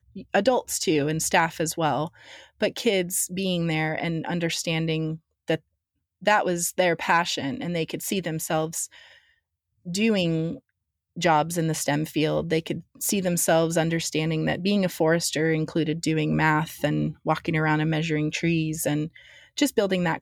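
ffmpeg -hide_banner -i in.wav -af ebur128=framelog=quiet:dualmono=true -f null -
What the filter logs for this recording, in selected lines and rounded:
Integrated loudness:
  I:         -21.7 LUFS
  Threshold: -32.0 LUFS
Loudness range:
  LRA:         3.3 LU
  Threshold: -42.2 LUFS
  LRA low:   -24.2 LUFS
  LRA high:  -20.9 LUFS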